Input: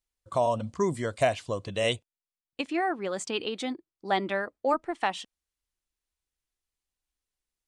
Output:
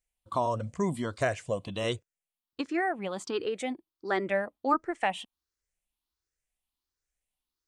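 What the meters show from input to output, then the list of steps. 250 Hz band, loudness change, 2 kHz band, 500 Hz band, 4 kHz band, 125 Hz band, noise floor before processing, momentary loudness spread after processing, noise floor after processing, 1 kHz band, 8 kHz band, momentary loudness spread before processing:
0.0 dB, −2.0 dB, −1.0 dB, −2.5 dB, −5.5 dB, −0.5 dB, below −85 dBFS, 10 LU, below −85 dBFS, −1.5 dB, −4.5 dB, 9 LU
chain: rippled gain that drifts along the octave scale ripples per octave 0.52, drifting +1.4 Hz, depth 10 dB
dynamic equaliser 4,400 Hz, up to −5 dB, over −48 dBFS, Q 1.2
level −1.5 dB

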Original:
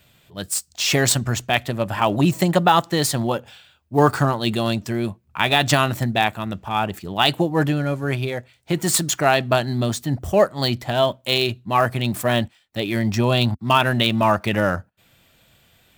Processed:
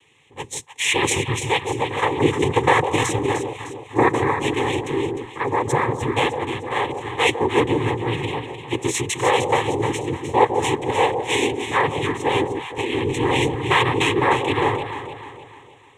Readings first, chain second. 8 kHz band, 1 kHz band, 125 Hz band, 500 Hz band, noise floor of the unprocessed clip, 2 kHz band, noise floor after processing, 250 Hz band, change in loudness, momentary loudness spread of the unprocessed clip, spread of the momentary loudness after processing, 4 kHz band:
−3.5 dB, +1.0 dB, −4.0 dB, +1.0 dB, −58 dBFS, +1.0 dB, −46 dBFS, −2.0 dB, −0.5 dB, 8 LU, 9 LU, −3.5 dB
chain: time-frequency box erased 0:05.18–0:06.00, 1,600–6,300 Hz
cochlear-implant simulation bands 6
phaser with its sweep stopped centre 970 Hz, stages 8
on a send: delay that swaps between a low-pass and a high-pass 152 ms, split 830 Hz, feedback 66%, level −5.5 dB
on the sum: level +3 dB

